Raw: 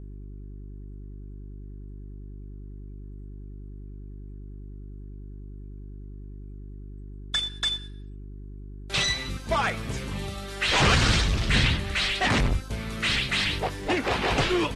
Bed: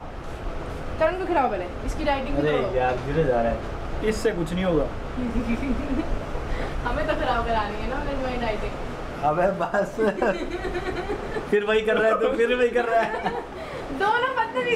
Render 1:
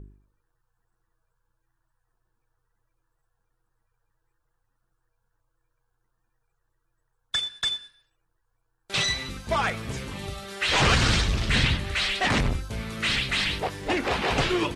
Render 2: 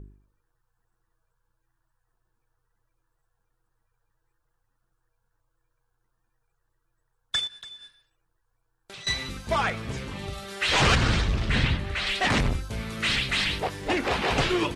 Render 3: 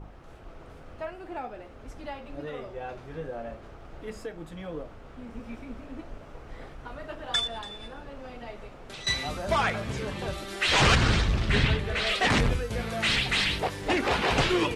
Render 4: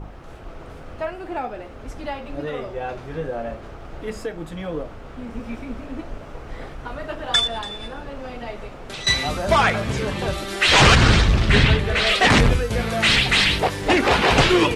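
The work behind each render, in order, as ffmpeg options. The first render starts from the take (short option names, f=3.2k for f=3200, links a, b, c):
-af "bandreject=f=50:t=h:w=4,bandreject=f=100:t=h:w=4,bandreject=f=150:t=h:w=4,bandreject=f=200:t=h:w=4,bandreject=f=250:t=h:w=4,bandreject=f=300:t=h:w=4,bandreject=f=350:t=h:w=4,bandreject=f=400:t=h:w=4"
-filter_complex "[0:a]asettb=1/sr,asplit=3[a][b][c];[a]atrim=end=7.474[d];[b]atrim=start=7.47:end=9.07,asetpts=PTS-STARTPTS,afade=t=in:d=0.004:c=qsin,afade=t=out:st=1.596:d=0.004:c=qsin,acompressor=threshold=-40dB:ratio=12:attack=3.2:release=140:knee=1:detection=peak[e];[c]atrim=start=9.066[f];[d][e]acrossfade=d=0.004:c1=hsin:c2=qsin[g];[g][f]acrossfade=d=0.004:c1=qsin:c2=hsin,asettb=1/sr,asplit=3[h][i][j];[h]atrim=end=9.634[k];[i]atrim=start=9.63:end=10.33,asetpts=PTS-STARTPTS,afade=t=in:d=0.004:c=qsin,afade=t=out:st=0.696:d=0.004:c=qsin,highshelf=f=8.5k:g=-10[l];[j]atrim=start=10.326[m];[k][l]acrossfade=d=0.004:c1=hsin:c2=qsin[n];[n][m]acrossfade=d=0.004:c1=qsin:c2=hsin,asettb=1/sr,asplit=3[o][p][q];[o]atrim=end=10.954[r];[p]atrim=start=10.95:end=12.07,asetpts=PTS-STARTPTS,afade=t=in:d=0.004:c=qsin,afade=t=out:st=1.116:d=0.004:c=qsin,highshelf=f=3.4k:g=-10[s];[q]atrim=start=12.066[t];[r][s]acrossfade=d=0.004:c1=hsin:c2=qsin[u];[u][t]acrossfade=d=0.004:c1=qsin:c2=hsin"
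-filter_complex "[1:a]volume=-15dB[a];[0:a][a]amix=inputs=2:normalize=0"
-af "volume=8.5dB,alimiter=limit=-3dB:level=0:latency=1"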